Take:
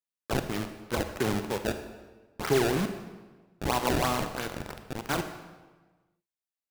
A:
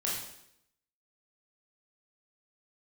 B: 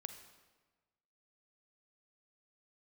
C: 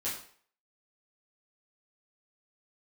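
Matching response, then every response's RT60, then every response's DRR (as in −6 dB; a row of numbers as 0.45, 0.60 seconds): B; 0.75, 1.3, 0.50 seconds; −5.5, 7.5, −9.0 decibels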